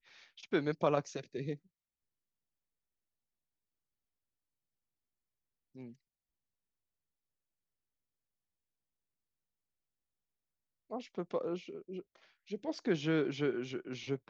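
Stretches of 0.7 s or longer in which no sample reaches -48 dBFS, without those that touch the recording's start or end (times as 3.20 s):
1.56–5.75 s
5.92–10.91 s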